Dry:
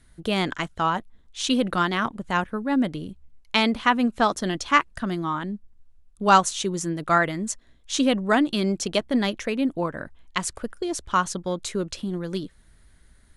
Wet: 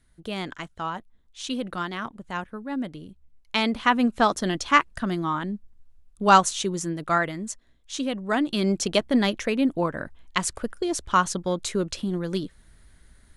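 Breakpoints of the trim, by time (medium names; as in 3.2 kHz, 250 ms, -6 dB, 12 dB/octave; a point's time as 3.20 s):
3.09 s -7.5 dB
4.00 s +0.5 dB
6.46 s +0.5 dB
8.13 s -7.5 dB
8.72 s +1.5 dB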